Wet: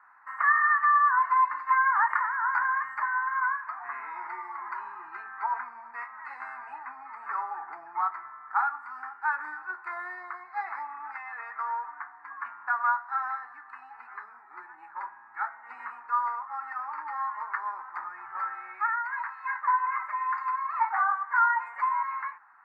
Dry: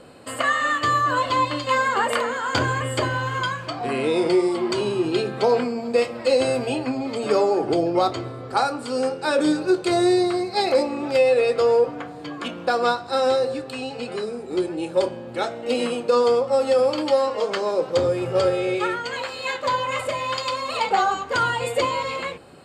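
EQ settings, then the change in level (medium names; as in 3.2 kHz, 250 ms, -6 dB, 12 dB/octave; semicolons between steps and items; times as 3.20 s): elliptic band-pass 900–1900 Hz, stop band 40 dB; 0.0 dB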